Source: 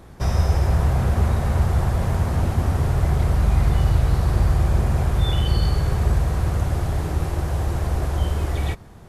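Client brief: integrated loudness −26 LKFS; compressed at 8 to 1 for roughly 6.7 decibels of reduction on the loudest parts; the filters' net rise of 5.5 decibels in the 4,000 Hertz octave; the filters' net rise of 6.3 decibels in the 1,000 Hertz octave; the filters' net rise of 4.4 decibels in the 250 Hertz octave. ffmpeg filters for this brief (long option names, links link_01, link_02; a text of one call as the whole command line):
ffmpeg -i in.wav -af "equalizer=frequency=250:width_type=o:gain=6.5,equalizer=frequency=1000:width_type=o:gain=7.5,equalizer=frequency=4000:width_type=o:gain=6.5,acompressor=threshold=-19dB:ratio=8,volume=-1dB" out.wav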